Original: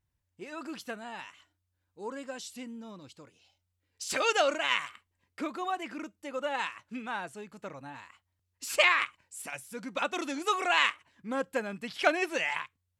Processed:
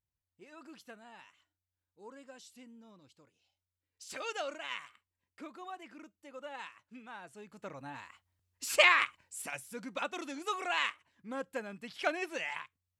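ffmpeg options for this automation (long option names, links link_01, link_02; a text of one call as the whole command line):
ffmpeg -i in.wav -af "afade=type=in:start_time=7.2:duration=0.75:silence=0.251189,afade=type=out:start_time=9.37:duration=0.8:silence=0.446684" out.wav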